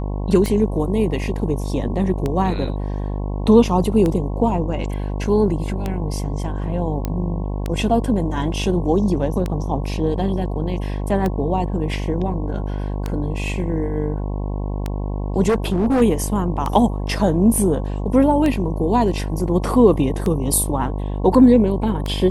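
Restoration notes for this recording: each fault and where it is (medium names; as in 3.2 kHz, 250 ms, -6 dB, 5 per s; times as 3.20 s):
buzz 50 Hz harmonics 22 -24 dBFS
tick 33 1/3 rpm -10 dBFS
7.05 s: pop -10 dBFS
15.48–16.02 s: clipped -14 dBFS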